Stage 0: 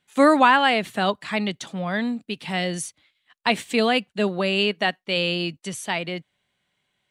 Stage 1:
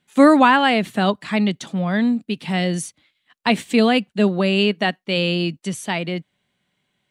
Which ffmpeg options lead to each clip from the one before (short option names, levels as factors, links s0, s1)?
-af "equalizer=f=210:t=o:w=1.7:g=7,volume=1.12"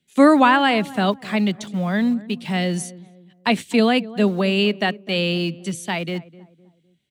-filter_complex "[0:a]acrossover=split=180|580|1900[s0][s1][s2][s3];[s2]aeval=exprs='val(0)*gte(abs(val(0)),0.00668)':c=same[s4];[s0][s1][s4][s3]amix=inputs=4:normalize=0,asplit=2[s5][s6];[s6]adelay=254,lowpass=f=930:p=1,volume=0.133,asplit=2[s7][s8];[s8]adelay=254,lowpass=f=930:p=1,volume=0.41,asplit=2[s9][s10];[s10]adelay=254,lowpass=f=930:p=1,volume=0.41[s11];[s5][s7][s9][s11]amix=inputs=4:normalize=0,volume=0.891"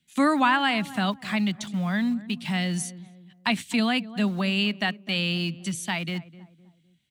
-filter_complex "[0:a]equalizer=f=450:w=1.5:g=-14,asplit=2[s0][s1];[s1]acompressor=threshold=0.0355:ratio=6,volume=1.12[s2];[s0][s2]amix=inputs=2:normalize=0,volume=0.531"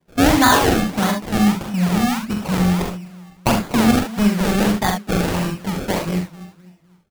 -af "acrusher=samples=31:mix=1:aa=0.000001:lfo=1:lforange=31:lforate=1.6,aecho=1:1:44|67|77:0.531|0.355|0.282,volume=2"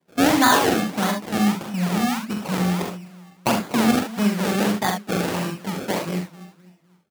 -af "highpass=170,volume=0.75"